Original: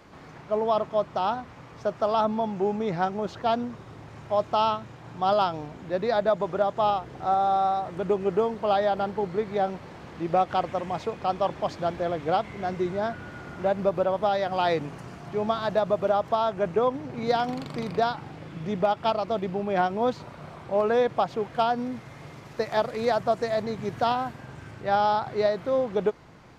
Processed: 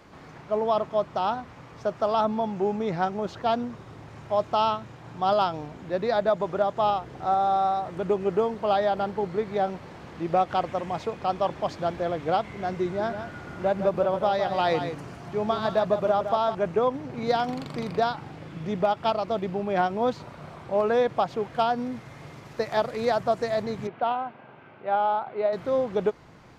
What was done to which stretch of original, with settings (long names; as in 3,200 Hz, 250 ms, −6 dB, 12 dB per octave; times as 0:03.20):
0:12.84–0:16.55: single-tap delay 158 ms −8.5 dB
0:23.87–0:25.53: loudspeaker in its box 290–2,700 Hz, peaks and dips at 300 Hz −6 dB, 470 Hz −3 dB, 1,100 Hz −3 dB, 1,800 Hz −9 dB